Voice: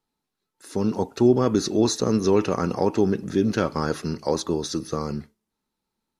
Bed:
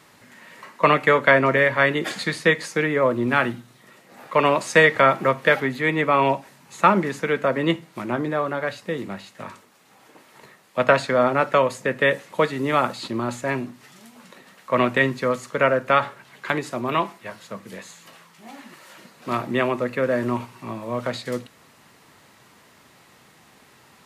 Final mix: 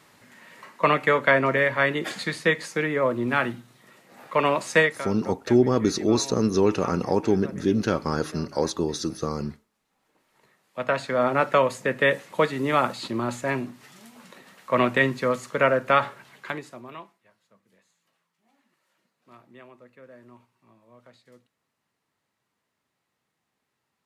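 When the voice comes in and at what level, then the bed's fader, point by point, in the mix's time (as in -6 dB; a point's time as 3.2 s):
4.30 s, -1.0 dB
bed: 4.8 s -3.5 dB
5.09 s -21 dB
9.96 s -21 dB
11.38 s -1.5 dB
16.25 s -1.5 dB
17.29 s -26.5 dB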